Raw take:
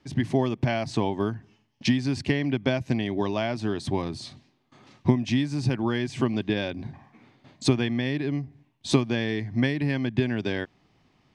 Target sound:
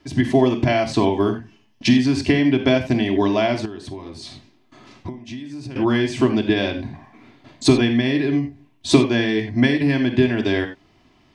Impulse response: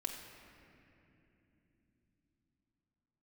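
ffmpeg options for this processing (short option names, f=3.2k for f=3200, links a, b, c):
-filter_complex "[1:a]atrim=start_sample=2205,atrim=end_sample=4410[a];[0:a][a]afir=irnorm=-1:irlink=0,asettb=1/sr,asplit=3[b][c][d];[b]atrim=end=3.654[e];[c]atrim=start=3.65:end=5.76,asetpts=PTS-STARTPTS,afade=t=in:d=0.004:c=qsin,afade=t=out:st=2.106:d=0.004:c=qsin,acompressor=threshold=-38dB:ratio=16[f];[d]atrim=start=5.756[g];[e][f]acrossfade=d=0.004:c1=hsin:c2=qsin[h];[h][g]acrossfade=d=0.004:c1=qsin:c2=hsin,volume=8.5dB"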